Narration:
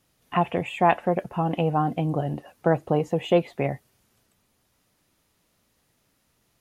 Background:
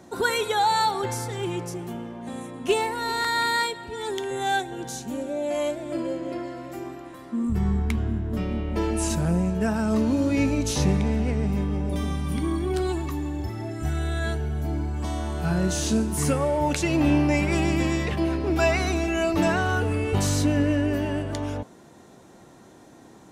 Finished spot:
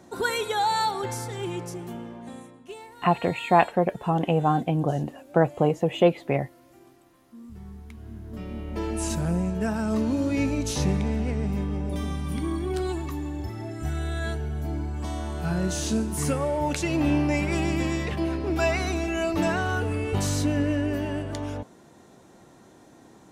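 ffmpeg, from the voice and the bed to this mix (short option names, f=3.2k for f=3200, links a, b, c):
-filter_complex "[0:a]adelay=2700,volume=1dB[a];[1:a]volume=13.5dB,afade=t=out:st=2.13:d=0.53:silence=0.158489,afade=t=in:st=7.96:d=1.16:silence=0.158489[b];[a][b]amix=inputs=2:normalize=0"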